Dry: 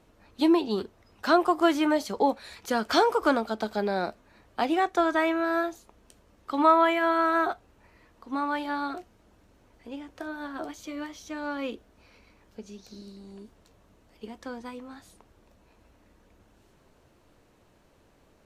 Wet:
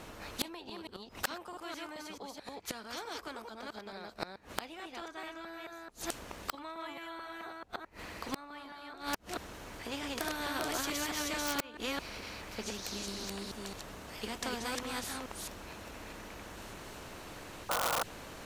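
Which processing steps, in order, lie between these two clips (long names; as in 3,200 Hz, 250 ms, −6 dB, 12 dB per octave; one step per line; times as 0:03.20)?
delay that plays each chunk backwards 218 ms, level −1 dB
gate with flip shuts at −22 dBFS, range −28 dB
sound drawn into the spectrogram noise, 0:17.69–0:18.03, 460–1,500 Hz −29 dBFS
in parallel at −12 dB: wrap-around overflow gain 23.5 dB
on the sum: every bin compressed towards the loudest bin 2 to 1
level +3.5 dB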